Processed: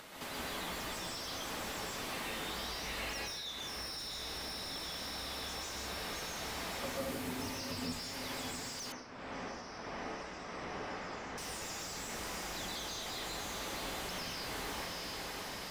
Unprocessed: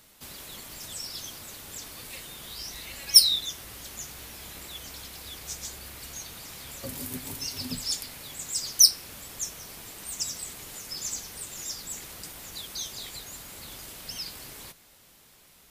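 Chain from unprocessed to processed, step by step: diffused feedback echo 0.703 s, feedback 57%, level -9.5 dB; compressor 8:1, threshold -41 dBFS, peak gain reduction 29.5 dB; plate-style reverb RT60 0.72 s, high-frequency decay 0.75×, pre-delay 0.11 s, DRR -4.5 dB; upward compressor, threshold -57 dBFS; 8.92–11.38 LPF 2000 Hz 12 dB/oct; overdrive pedal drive 20 dB, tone 1100 Hz, clips at -24.5 dBFS; gain +1 dB

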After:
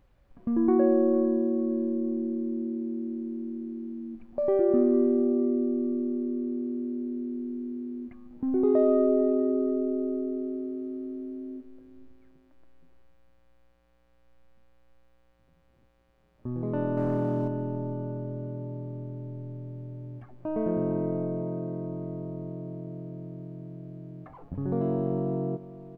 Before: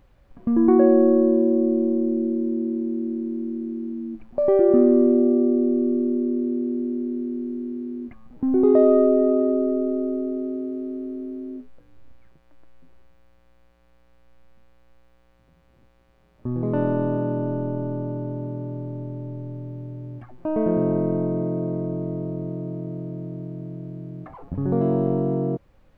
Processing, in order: 16.97–17.48 sample leveller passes 1; on a send: feedback echo 0.454 s, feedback 35%, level -16.5 dB; on the sum: gain -6.5 dB

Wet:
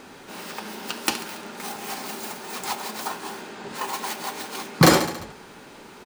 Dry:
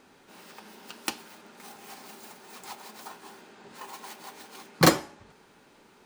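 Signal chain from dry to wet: on a send: feedback echo 70 ms, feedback 60%, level -19 dB; on the sum: maximiser +14.5 dB; gain -1.5 dB

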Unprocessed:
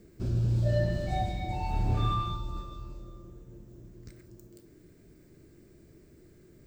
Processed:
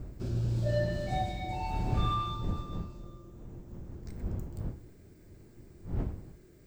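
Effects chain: wind noise 110 Hz -35 dBFS; low shelf 230 Hz -5 dB

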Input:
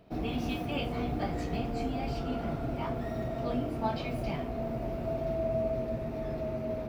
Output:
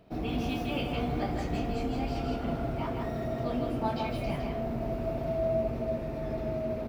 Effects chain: echo 0.161 s -4 dB

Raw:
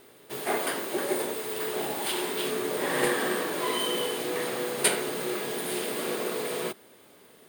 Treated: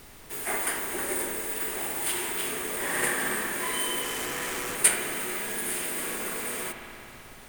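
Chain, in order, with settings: bell 15000 Hz +7.5 dB 2.4 oct; 4.02–4.75 Schmitt trigger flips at -35 dBFS; graphic EQ 125/500/2000/4000/8000 Hz -4/-5/+5/-8/+4 dB; added noise pink -47 dBFS; spring tank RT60 3.4 s, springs 56 ms, chirp 40 ms, DRR 4 dB; gain -4 dB

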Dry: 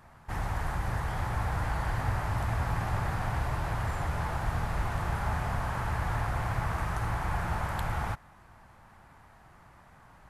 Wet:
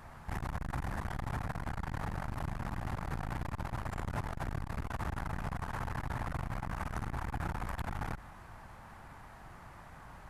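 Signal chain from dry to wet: octaver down 2 oct, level -3 dB; compressor 2.5:1, threshold -30 dBFS, peak gain reduction 5.5 dB; limiter -28.5 dBFS, peak gain reduction 7 dB; core saturation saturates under 150 Hz; gain +4 dB

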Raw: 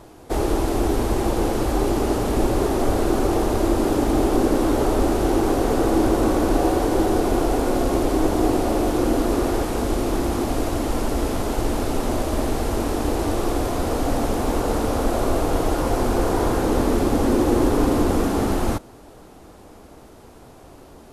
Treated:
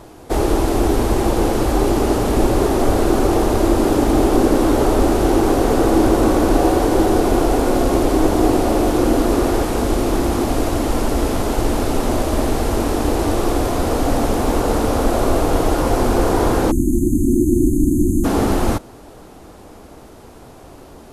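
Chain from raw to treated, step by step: spectral delete 16.71–18.25, 380–6200 Hz; gain +4.5 dB

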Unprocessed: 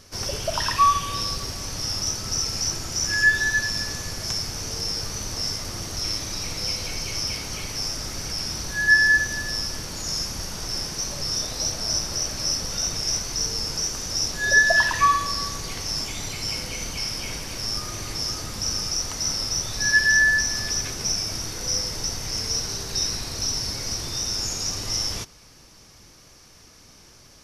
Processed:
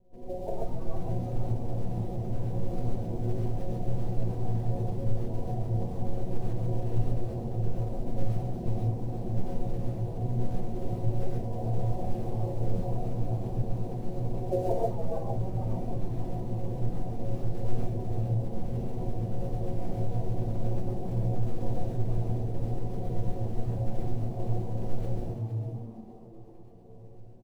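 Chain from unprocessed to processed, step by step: reverb removal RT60 1 s; steep low-pass 730 Hz 72 dB/oct; notches 60/120/180 Hz; AGC gain up to 11 dB; metallic resonator 180 Hz, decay 0.29 s, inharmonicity 0.002; in parallel at -8.5 dB: short-mantissa float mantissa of 2-bit; on the sum: harmoniser -7 st -2 dB, +5 st -12 dB; flange 2 Hz, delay 9.1 ms, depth 7.8 ms, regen -62%; on a send: frequency-shifting echo 0.46 s, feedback 33%, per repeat +110 Hz, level -9.5 dB; on the sum: non-linear reverb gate 0.16 s rising, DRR -2.5 dB; gain +3 dB

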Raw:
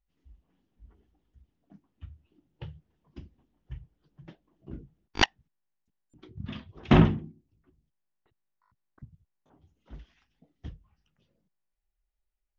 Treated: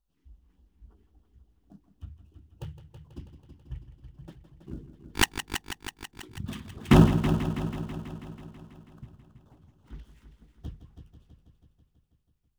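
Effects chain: switching dead time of 0.1 ms; LFO notch square 3.6 Hz 610–2100 Hz; multi-head echo 0.163 s, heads first and second, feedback 62%, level -12 dB; gain +2 dB

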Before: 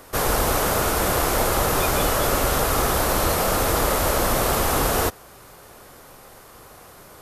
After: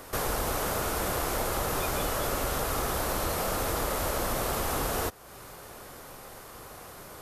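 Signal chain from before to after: compressor 2:1, threshold -34 dBFS, peak gain reduction 9.5 dB

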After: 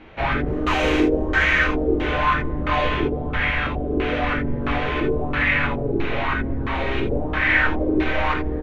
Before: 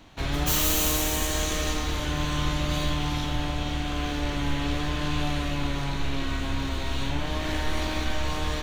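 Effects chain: LFO low-pass square 1.5 Hz 430–2300 Hz; harmoniser -3 st -4 dB; non-linear reverb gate 0.1 s flat, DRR 1.5 dB; LFO bell 1 Hz 360–2000 Hz +13 dB

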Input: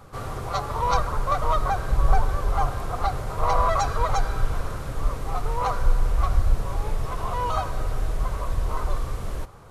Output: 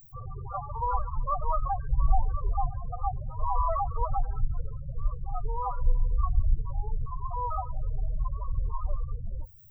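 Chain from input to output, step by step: added noise violet -36 dBFS; loudest bins only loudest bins 8; gain -4 dB

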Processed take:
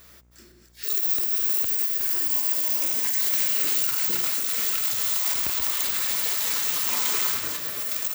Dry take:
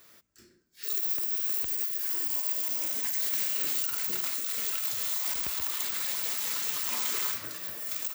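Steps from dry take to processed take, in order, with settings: regenerating reverse delay 0.261 s, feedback 41%, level -7 dB; buzz 60 Hz, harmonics 39, -64 dBFS -8 dB/oct; gain +5.5 dB

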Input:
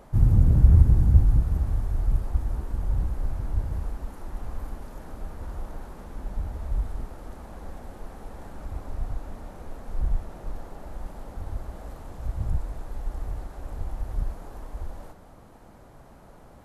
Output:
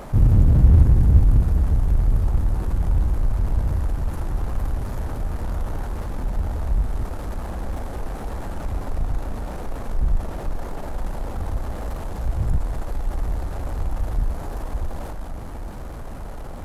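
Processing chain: diffused feedback echo 1.171 s, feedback 66%, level -14.5 dB; power-law curve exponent 0.7

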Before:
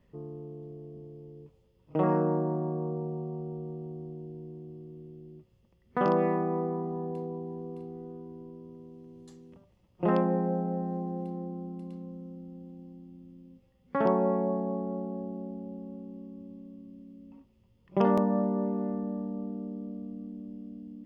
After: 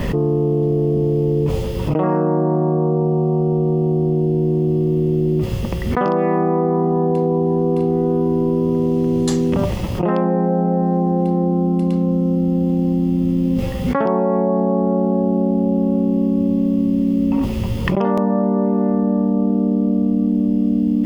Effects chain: fast leveller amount 100%; gain +4.5 dB

